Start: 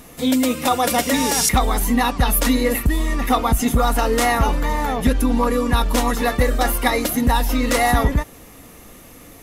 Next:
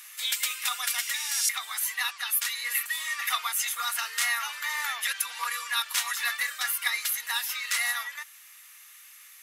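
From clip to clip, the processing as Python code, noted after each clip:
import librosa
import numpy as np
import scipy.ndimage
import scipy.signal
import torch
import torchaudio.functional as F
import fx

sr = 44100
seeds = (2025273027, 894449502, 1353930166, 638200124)

y = scipy.signal.sosfilt(scipy.signal.butter(4, 1500.0, 'highpass', fs=sr, output='sos'), x)
y = fx.rider(y, sr, range_db=5, speed_s=0.5)
y = y * 10.0 ** (-3.0 / 20.0)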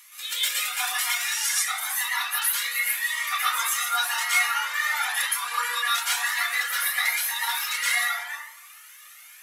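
y = fx.rev_plate(x, sr, seeds[0], rt60_s=0.93, hf_ratio=0.45, predelay_ms=105, drr_db=-9.5)
y = fx.comb_cascade(y, sr, direction='rising', hz=0.94)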